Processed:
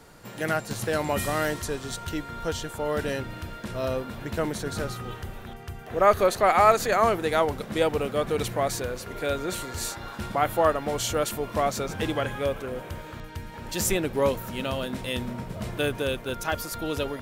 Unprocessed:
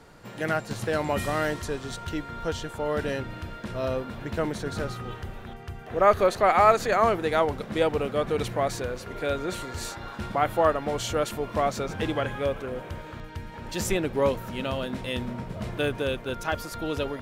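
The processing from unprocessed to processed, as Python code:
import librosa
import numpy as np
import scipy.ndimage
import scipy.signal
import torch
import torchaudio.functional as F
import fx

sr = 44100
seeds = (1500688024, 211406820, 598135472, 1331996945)

y = fx.high_shelf(x, sr, hz=7300.0, db=11.0)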